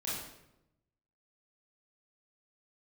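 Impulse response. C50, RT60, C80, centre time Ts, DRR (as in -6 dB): 0.0 dB, 0.90 s, 3.5 dB, 69 ms, -8.5 dB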